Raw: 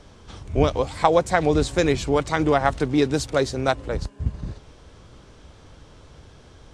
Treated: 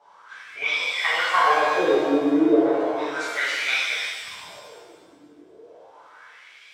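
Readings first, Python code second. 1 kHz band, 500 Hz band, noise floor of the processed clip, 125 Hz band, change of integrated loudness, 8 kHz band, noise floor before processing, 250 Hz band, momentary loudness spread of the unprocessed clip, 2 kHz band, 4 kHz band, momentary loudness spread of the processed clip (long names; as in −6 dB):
+0.5 dB, −2.0 dB, −51 dBFS, −23.5 dB, +1.0 dB, −3.0 dB, −49 dBFS, +0.5 dB, 11 LU, +7.0 dB, +5.5 dB, 14 LU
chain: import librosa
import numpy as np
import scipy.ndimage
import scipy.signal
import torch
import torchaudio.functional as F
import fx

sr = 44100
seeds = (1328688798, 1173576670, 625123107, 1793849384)

y = fx.wah_lfo(x, sr, hz=0.34, low_hz=290.0, high_hz=2400.0, q=13.0)
y = fx.riaa(y, sr, side='recording')
y = fx.rev_shimmer(y, sr, seeds[0], rt60_s=1.5, semitones=7, shimmer_db=-8, drr_db=-11.0)
y = F.gain(torch.from_numpy(y), 7.5).numpy()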